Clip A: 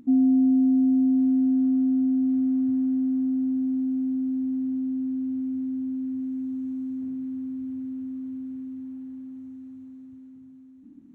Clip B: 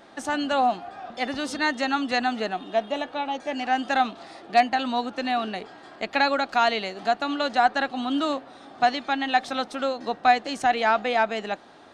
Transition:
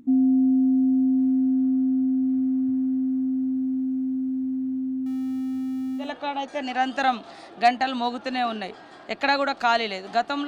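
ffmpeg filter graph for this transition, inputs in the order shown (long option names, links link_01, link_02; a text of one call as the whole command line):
ffmpeg -i cue0.wav -i cue1.wav -filter_complex "[0:a]asettb=1/sr,asplit=3[link_01][link_02][link_03];[link_01]atrim=end=5.064[link_04];[link_02]atrim=start=5.06:end=6.14,asetpts=PTS-STARTPTS,afade=type=in:duration=0.004:curve=qsin,afade=type=out:start_time=1.076:duration=0.004:curve=qsin,aeval=exprs='val(0)+0.5*0.00944*sgn(val(0))':channel_layout=same[link_05];[link_03]atrim=start=6.136[link_06];[link_04][link_05]acrossfade=duration=0.004:curve1=hsin:curve2=qsin[link_07];[link_07][link_06]acrossfade=duration=0.004:curve1=qsin:curve2=hsin,apad=whole_dur=10.47,atrim=end=10.47,atrim=end=6.14,asetpts=PTS-STARTPTS[link_08];[1:a]atrim=start=2.88:end=7.39,asetpts=PTS-STARTPTS[link_09];[link_08][link_09]acrossfade=duration=0.18:curve1=tri:curve2=tri" out.wav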